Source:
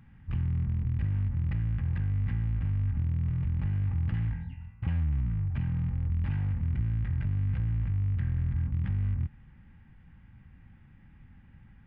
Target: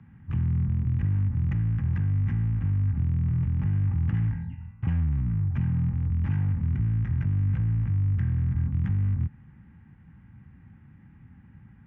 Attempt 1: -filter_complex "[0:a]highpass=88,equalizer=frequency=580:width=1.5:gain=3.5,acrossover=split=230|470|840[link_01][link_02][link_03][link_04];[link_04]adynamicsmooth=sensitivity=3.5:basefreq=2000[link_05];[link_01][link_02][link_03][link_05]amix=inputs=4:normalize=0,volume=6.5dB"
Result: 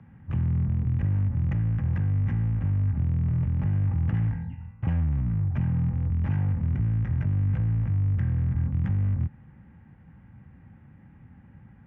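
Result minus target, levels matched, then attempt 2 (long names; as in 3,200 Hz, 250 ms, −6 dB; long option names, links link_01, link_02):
500 Hz band +6.0 dB
-filter_complex "[0:a]highpass=88,equalizer=frequency=580:width=1.5:gain=-7,acrossover=split=230|470|840[link_01][link_02][link_03][link_04];[link_04]adynamicsmooth=sensitivity=3.5:basefreq=2000[link_05];[link_01][link_02][link_03][link_05]amix=inputs=4:normalize=0,volume=6.5dB"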